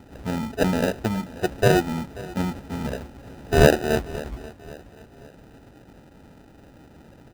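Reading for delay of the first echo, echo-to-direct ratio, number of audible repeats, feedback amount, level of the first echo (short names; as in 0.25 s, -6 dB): 0.534 s, -18.0 dB, 3, 41%, -19.0 dB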